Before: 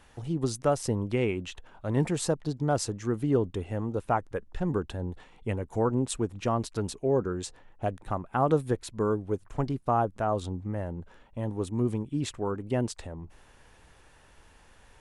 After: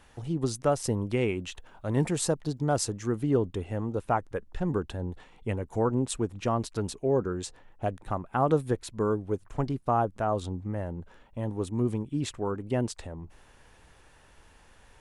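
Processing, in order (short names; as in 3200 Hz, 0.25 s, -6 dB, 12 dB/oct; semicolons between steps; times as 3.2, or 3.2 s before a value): 0.84–3.15 high shelf 7300 Hz +6 dB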